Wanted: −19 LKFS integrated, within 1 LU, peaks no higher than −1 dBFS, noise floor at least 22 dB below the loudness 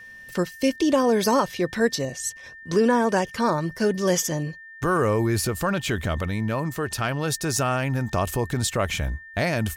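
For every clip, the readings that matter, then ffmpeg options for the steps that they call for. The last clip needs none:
interfering tone 1,800 Hz; level of the tone −41 dBFS; integrated loudness −24.0 LKFS; sample peak −8.5 dBFS; target loudness −19.0 LKFS
→ -af "bandreject=frequency=1800:width=30"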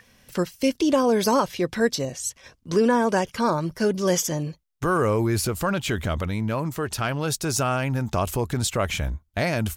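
interfering tone none found; integrated loudness −24.5 LKFS; sample peak −8.5 dBFS; target loudness −19.0 LKFS
→ -af "volume=5.5dB"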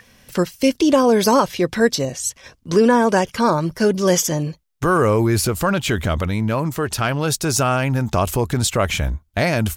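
integrated loudness −19.0 LKFS; sample peak −3.0 dBFS; background noise floor −57 dBFS

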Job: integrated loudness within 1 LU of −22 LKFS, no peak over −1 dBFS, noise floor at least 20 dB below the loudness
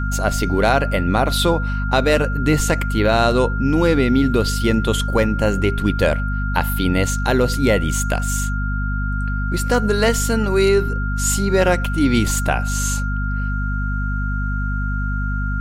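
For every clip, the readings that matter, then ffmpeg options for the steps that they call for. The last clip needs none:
mains hum 50 Hz; hum harmonics up to 250 Hz; level of the hum −19 dBFS; interfering tone 1,400 Hz; level of the tone −27 dBFS; integrated loudness −19.0 LKFS; sample peak −2.0 dBFS; target loudness −22.0 LKFS
→ -af "bandreject=frequency=50:width_type=h:width=4,bandreject=frequency=100:width_type=h:width=4,bandreject=frequency=150:width_type=h:width=4,bandreject=frequency=200:width_type=h:width=4,bandreject=frequency=250:width_type=h:width=4"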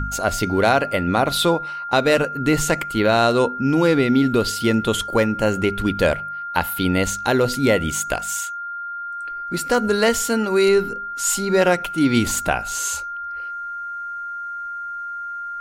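mains hum none found; interfering tone 1,400 Hz; level of the tone −27 dBFS
→ -af "bandreject=frequency=1400:width=30"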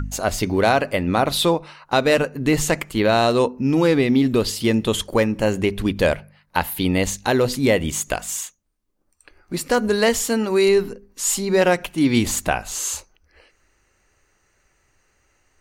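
interfering tone none found; integrated loudness −20.0 LKFS; sample peak −3.0 dBFS; target loudness −22.0 LKFS
→ -af "volume=-2dB"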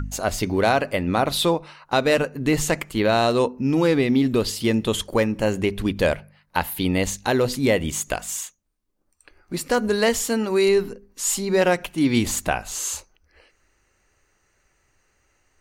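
integrated loudness −22.0 LKFS; sample peak −5.0 dBFS; background noise floor −67 dBFS

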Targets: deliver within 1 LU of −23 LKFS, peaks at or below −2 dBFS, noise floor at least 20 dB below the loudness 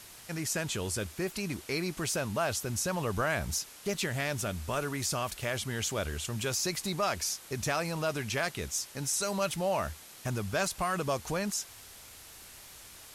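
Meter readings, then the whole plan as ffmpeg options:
background noise floor −51 dBFS; target noise floor −53 dBFS; integrated loudness −32.5 LKFS; sample peak −18.0 dBFS; target loudness −23.0 LKFS
→ -af "afftdn=noise_reduction=6:noise_floor=-51"
-af "volume=9.5dB"

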